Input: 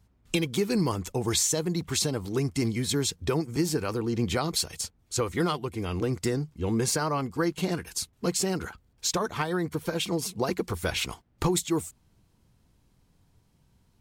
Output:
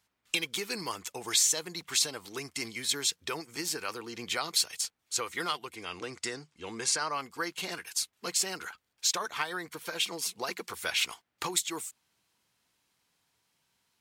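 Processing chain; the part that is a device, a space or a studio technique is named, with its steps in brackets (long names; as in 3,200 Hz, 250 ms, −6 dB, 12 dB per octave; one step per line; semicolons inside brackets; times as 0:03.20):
0:05.76–0:07.13: low-pass filter 9,600 Hz 24 dB per octave
filter by subtraction (in parallel: low-pass filter 2,200 Hz 12 dB per octave + polarity inversion)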